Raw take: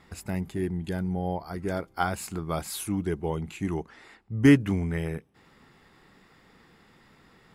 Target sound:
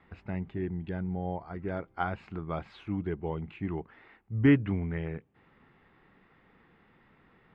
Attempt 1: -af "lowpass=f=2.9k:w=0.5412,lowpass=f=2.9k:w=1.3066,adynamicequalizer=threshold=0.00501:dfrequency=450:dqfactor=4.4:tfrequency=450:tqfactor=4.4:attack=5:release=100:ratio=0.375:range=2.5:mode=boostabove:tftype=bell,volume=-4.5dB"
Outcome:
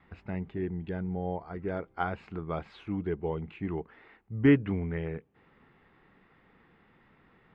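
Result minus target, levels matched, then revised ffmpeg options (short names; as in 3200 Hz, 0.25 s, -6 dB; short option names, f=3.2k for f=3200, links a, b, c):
500 Hz band +2.5 dB
-af "lowpass=f=2.9k:w=0.5412,lowpass=f=2.9k:w=1.3066,adynamicequalizer=threshold=0.00501:dfrequency=110:dqfactor=4.4:tfrequency=110:tqfactor=4.4:attack=5:release=100:ratio=0.375:range=2.5:mode=boostabove:tftype=bell,volume=-4.5dB"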